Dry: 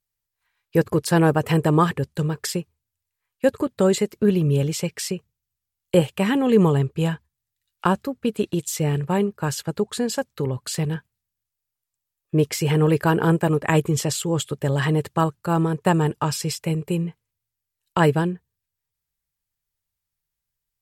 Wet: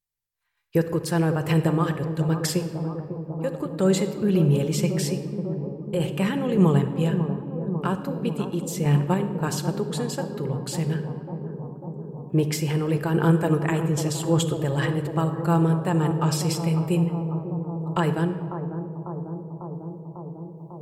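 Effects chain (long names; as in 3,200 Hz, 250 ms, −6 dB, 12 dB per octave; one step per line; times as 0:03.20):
brickwall limiter −10.5 dBFS, peak gain reduction 5.5 dB
sample-and-hold tremolo
bucket-brigade delay 547 ms, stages 4,096, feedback 78%, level −9.5 dB
rectangular room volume 2,500 cubic metres, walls mixed, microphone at 0.82 metres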